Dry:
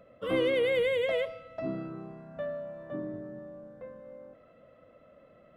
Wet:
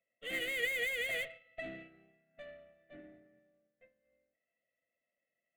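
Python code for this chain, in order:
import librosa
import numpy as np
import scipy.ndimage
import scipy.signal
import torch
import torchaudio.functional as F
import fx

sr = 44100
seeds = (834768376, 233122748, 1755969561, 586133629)

y = fx.highpass(x, sr, hz=300.0, slope=6)
y = fx.band_shelf(y, sr, hz=2800.0, db=12.5, octaves=1.3)
y = fx.tube_stage(y, sr, drive_db=36.0, bias=0.55)
y = fx.fixed_phaser(y, sr, hz=2300.0, stages=4)
y = fx.small_body(y, sr, hz=(700.0, 1900.0), ring_ms=60, db=15)
y = fx.upward_expand(y, sr, threshold_db=-57.0, expansion=2.5)
y = y * librosa.db_to_amplitude(4.0)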